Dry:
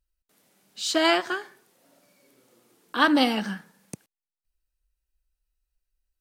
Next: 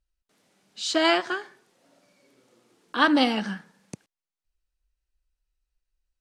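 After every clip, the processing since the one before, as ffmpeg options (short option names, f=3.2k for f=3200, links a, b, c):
-af "lowpass=7.4k"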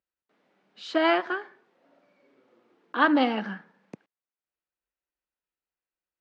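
-af "highpass=220,lowpass=2.2k"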